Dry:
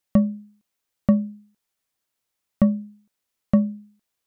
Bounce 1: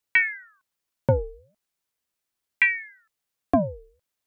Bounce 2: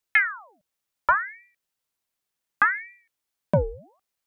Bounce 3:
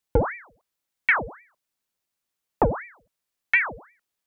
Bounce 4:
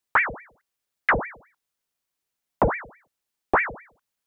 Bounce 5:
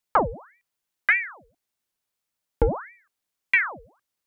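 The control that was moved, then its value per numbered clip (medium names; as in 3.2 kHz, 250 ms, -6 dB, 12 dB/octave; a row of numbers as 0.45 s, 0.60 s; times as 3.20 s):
ring modulator with a swept carrier, at: 0.39 Hz, 0.68 Hz, 2.8 Hz, 4.7 Hz, 1.7 Hz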